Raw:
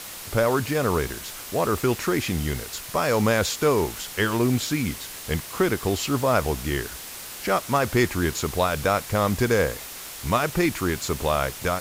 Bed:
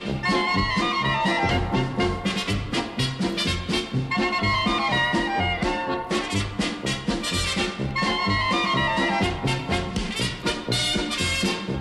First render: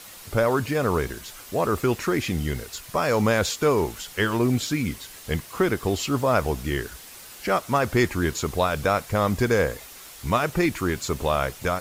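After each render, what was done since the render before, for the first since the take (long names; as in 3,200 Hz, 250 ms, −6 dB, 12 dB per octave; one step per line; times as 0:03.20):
broadband denoise 7 dB, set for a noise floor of −38 dBFS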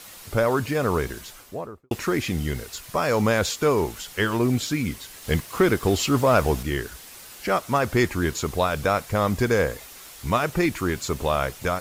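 0:01.19–0:01.91: fade out and dull
0:05.22–0:06.63: leveller curve on the samples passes 1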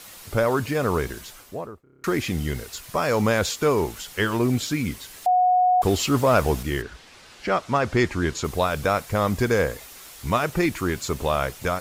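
0:01.83: stutter in place 0.03 s, 7 plays
0:05.26–0:05.82: beep over 730 Hz −15 dBFS
0:06.81–0:08.43: low-pass filter 3,900 Hz → 7,900 Hz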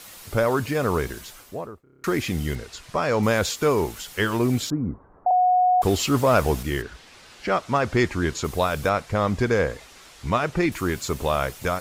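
0:02.55–0:03.23: high-frequency loss of the air 66 metres
0:04.70–0:05.31: Butterworth low-pass 1,200 Hz
0:08.89–0:10.72: high-frequency loss of the air 64 metres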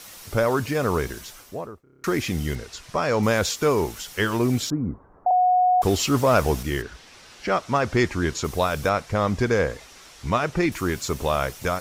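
parametric band 5,700 Hz +4.5 dB 0.26 octaves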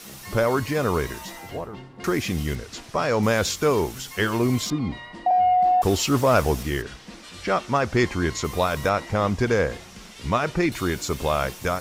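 mix in bed −18 dB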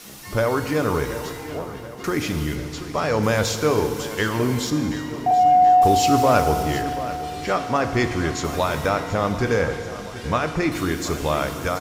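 repeating echo 731 ms, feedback 57%, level −14.5 dB
feedback delay network reverb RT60 2.3 s, low-frequency decay 1×, high-frequency decay 0.95×, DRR 7 dB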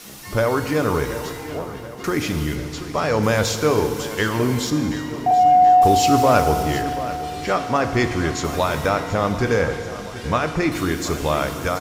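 level +1.5 dB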